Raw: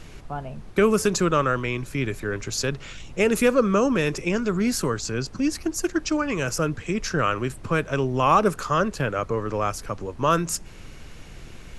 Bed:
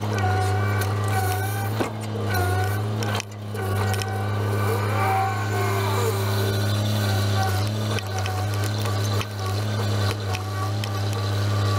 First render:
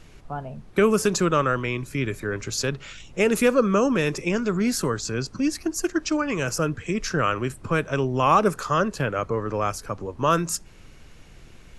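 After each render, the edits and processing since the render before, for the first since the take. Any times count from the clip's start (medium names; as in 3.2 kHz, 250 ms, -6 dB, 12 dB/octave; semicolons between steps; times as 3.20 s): noise print and reduce 6 dB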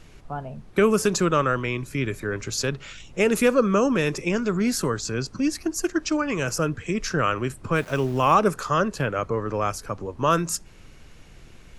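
7.76–8.34 s: small samples zeroed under -38 dBFS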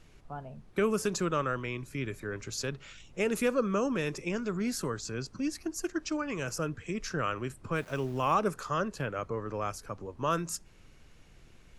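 trim -9 dB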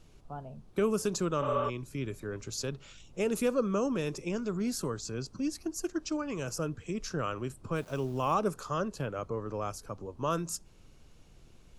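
peaking EQ 1.9 kHz -8.5 dB 0.93 oct; 1.45–1.67 s: spectral replace 310–4400 Hz before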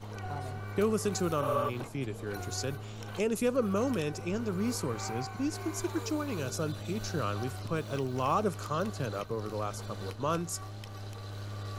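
add bed -17.5 dB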